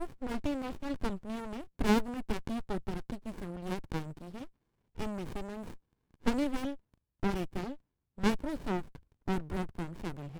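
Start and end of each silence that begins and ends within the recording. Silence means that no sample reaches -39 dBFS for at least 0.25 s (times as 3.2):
4.45–4.98
5.73–6.26
6.75–7.23
7.75–8.18
8.96–9.28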